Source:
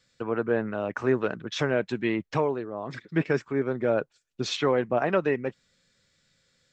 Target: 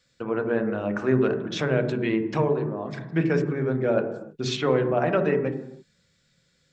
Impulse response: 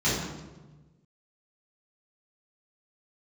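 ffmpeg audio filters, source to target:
-filter_complex "[0:a]asplit=2[a][b];[1:a]atrim=start_sample=2205,afade=t=out:st=0.38:d=0.01,atrim=end_sample=17199,lowpass=2.1k[c];[b][c]afir=irnorm=-1:irlink=0,volume=-19dB[d];[a][d]amix=inputs=2:normalize=0"

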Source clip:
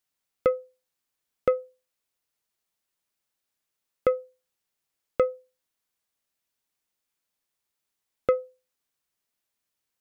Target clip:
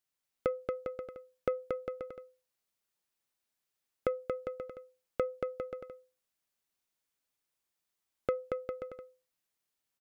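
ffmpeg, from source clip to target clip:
-af "acompressor=threshold=-22dB:ratio=6,aecho=1:1:230|402.5|531.9|628.9|701.7:0.631|0.398|0.251|0.158|0.1,volume=-5dB"

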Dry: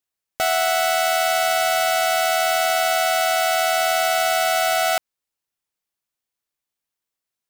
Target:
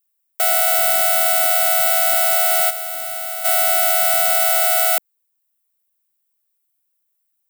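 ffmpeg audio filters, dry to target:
-filter_complex "[0:a]asplit=3[a][b][c];[a]afade=t=out:st=2.69:d=0.02[d];[b]agate=range=-33dB:threshold=-11dB:ratio=3:detection=peak,afade=t=in:st=2.69:d=0.02,afade=t=out:st=3.44:d=0.02[e];[c]afade=t=in:st=3.44:d=0.02[f];[d][e][f]amix=inputs=3:normalize=0,highshelf=f=10k:g=7,acrossover=split=230|460|5700[g][h][i][j];[g]aeval=exprs='max(val(0),0)':c=same[k];[k][h][i][j]amix=inputs=4:normalize=0,aexciter=amount=3.2:drive=3.7:freq=8k,volume=-1.5dB"

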